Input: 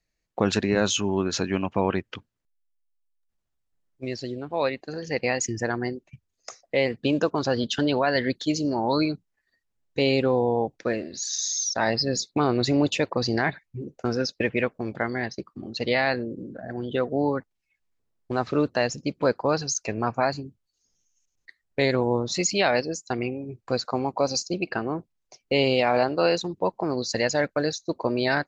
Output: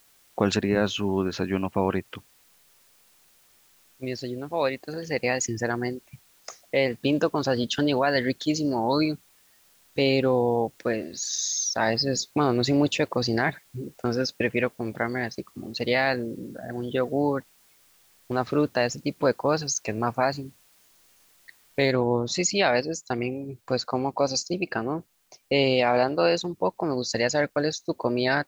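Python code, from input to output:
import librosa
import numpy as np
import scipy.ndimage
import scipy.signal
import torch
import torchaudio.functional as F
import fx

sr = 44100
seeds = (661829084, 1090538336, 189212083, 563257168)

y = fx.air_absorb(x, sr, metres=190.0, at=(0.56, 2.16))
y = fx.noise_floor_step(y, sr, seeds[0], at_s=21.91, before_db=-60, after_db=-69, tilt_db=0.0)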